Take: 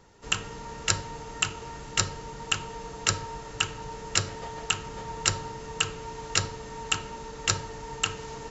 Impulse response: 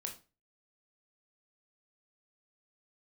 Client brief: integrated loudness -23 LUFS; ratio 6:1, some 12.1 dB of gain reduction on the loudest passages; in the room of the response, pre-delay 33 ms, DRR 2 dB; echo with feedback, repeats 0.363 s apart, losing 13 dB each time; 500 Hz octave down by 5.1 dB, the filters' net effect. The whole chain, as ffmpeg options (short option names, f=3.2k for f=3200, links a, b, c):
-filter_complex "[0:a]equalizer=f=500:t=o:g=-6,acompressor=threshold=-33dB:ratio=6,aecho=1:1:363|726|1089:0.224|0.0493|0.0108,asplit=2[a][b];[1:a]atrim=start_sample=2205,adelay=33[c];[b][c]afir=irnorm=-1:irlink=0,volume=-0.5dB[d];[a][d]amix=inputs=2:normalize=0,volume=14dB"